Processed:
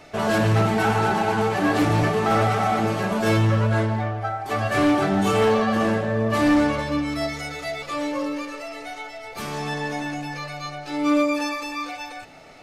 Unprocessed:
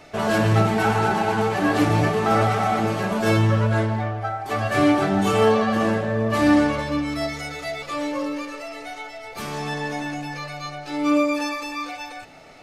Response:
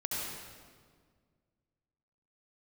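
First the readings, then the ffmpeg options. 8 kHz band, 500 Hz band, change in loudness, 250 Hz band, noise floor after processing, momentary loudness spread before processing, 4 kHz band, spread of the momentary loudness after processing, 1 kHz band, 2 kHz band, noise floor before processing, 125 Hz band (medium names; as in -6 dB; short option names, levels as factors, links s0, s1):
0.0 dB, -0.5 dB, -0.5 dB, -0.5 dB, -39 dBFS, 14 LU, 0.0 dB, 13 LU, -0.5 dB, -0.5 dB, -39 dBFS, -0.5 dB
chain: -af "asoftclip=type=hard:threshold=0.2"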